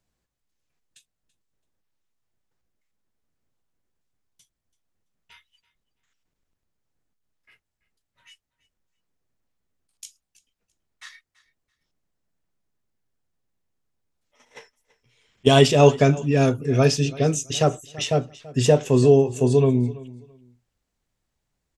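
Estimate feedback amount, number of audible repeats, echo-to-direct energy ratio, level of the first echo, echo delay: 21%, 2, -20.0 dB, -20.0 dB, 333 ms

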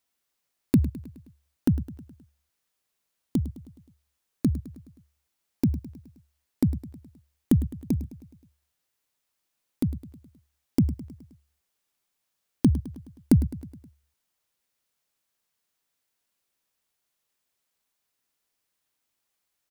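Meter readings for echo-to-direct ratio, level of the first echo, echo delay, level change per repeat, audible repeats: -13.5 dB, -15.0 dB, 105 ms, -5.0 dB, 4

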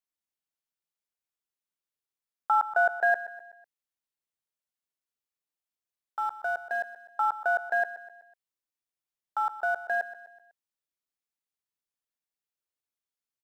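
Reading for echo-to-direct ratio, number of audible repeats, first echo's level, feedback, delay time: -13.5 dB, 4, -14.5 dB, 48%, 125 ms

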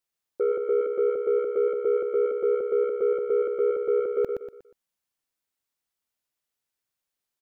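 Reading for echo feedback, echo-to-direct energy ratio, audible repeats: 36%, -5.0 dB, 4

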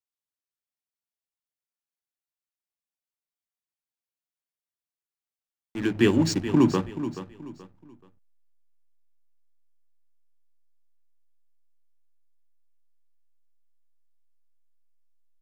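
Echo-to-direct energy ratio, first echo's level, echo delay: -11.5 dB, -12.0 dB, 429 ms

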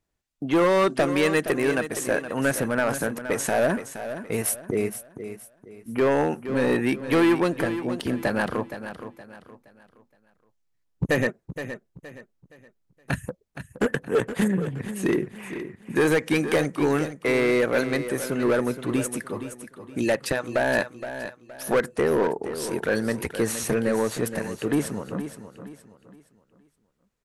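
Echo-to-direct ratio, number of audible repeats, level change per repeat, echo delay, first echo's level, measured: -10.5 dB, 3, -9.5 dB, 469 ms, -11.0 dB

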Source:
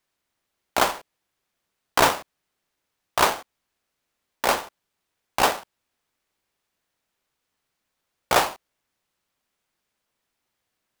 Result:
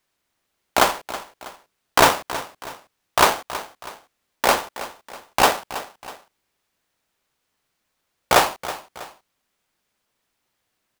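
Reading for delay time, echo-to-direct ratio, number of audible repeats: 323 ms, -14.0 dB, 2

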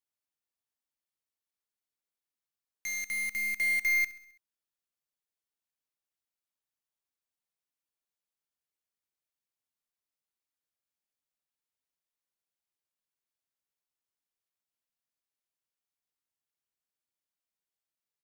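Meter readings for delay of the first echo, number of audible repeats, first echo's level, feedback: 66 ms, 4, -17.5 dB, 57%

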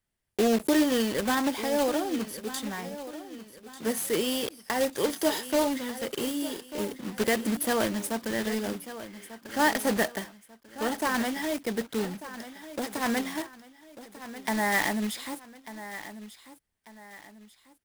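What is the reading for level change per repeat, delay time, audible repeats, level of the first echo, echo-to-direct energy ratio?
-8.5 dB, 1193 ms, 2, -14.0 dB, -13.5 dB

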